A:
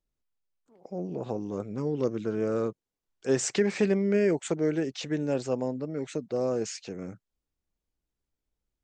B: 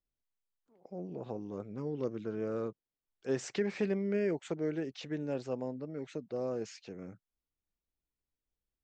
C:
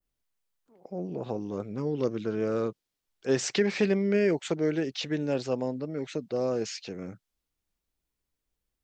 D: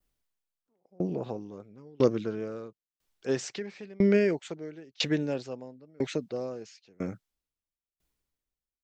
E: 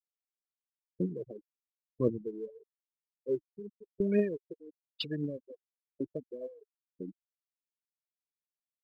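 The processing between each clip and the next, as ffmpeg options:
ffmpeg -i in.wav -af "lowpass=4900,volume=-7.5dB" out.wav
ffmpeg -i in.wav -af "adynamicequalizer=threshold=0.00112:dfrequency=4400:dqfactor=0.71:tfrequency=4400:tqfactor=0.71:attack=5:release=100:ratio=0.375:range=3.5:mode=boostabove:tftype=bell,volume=7dB" out.wav
ffmpeg -i in.wav -af "aeval=exprs='val(0)*pow(10,-31*if(lt(mod(1*n/s,1),2*abs(1)/1000),1-mod(1*n/s,1)/(2*abs(1)/1000),(mod(1*n/s,1)-2*abs(1)/1000)/(1-2*abs(1)/1000))/20)':channel_layout=same,volume=7dB" out.wav
ffmpeg -i in.wav -af "afftfilt=real='re*gte(hypot(re,im),0.0891)':imag='im*gte(hypot(re,im),0.0891)':win_size=1024:overlap=0.75,aphaser=in_gain=1:out_gain=1:delay=3.4:decay=0.53:speed=1.9:type=triangular,volume=-6.5dB" out.wav

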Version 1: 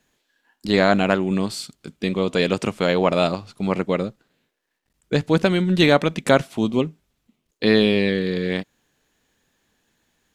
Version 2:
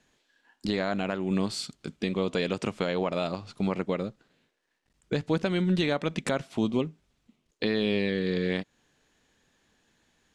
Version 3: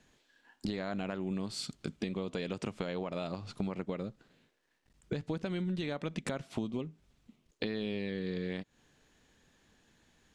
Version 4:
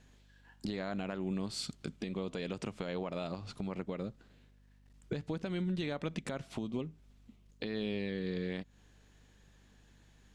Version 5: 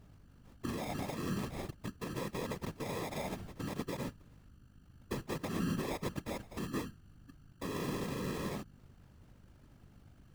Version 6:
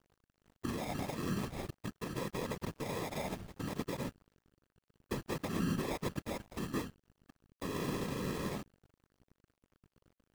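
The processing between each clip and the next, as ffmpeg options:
ffmpeg -i in.wav -af "lowpass=8300,acompressor=threshold=-30dB:ratio=1.5,alimiter=limit=-15.5dB:level=0:latency=1:release=232" out.wav
ffmpeg -i in.wav -af "lowshelf=frequency=220:gain=5,acompressor=threshold=-33dB:ratio=6" out.wav
ffmpeg -i in.wav -af "alimiter=level_in=2dB:limit=-24dB:level=0:latency=1:release=146,volume=-2dB,aeval=exprs='val(0)+0.000794*(sin(2*PI*50*n/s)+sin(2*PI*2*50*n/s)/2+sin(2*PI*3*50*n/s)/3+sin(2*PI*4*50*n/s)/4+sin(2*PI*5*50*n/s)/5)':channel_layout=same" out.wav
ffmpeg -i in.wav -af "aeval=exprs='val(0)+0.000794*(sin(2*PI*50*n/s)+sin(2*PI*2*50*n/s)/2+sin(2*PI*3*50*n/s)/3+sin(2*PI*4*50*n/s)/4+sin(2*PI*5*50*n/s)/5)':channel_layout=same,acrusher=samples=30:mix=1:aa=0.000001,afftfilt=real='hypot(re,im)*cos(2*PI*random(0))':imag='hypot(re,im)*sin(2*PI*random(1))':win_size=512:overlap=0.75,volume=5dB" out.wav
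ffmpeg -i in.wav -af "aeval=exprs='sgn(val(0))*max(abs(val(0))-0.00211,0)':channel_layout=same,volume=1.5dB" out.wav

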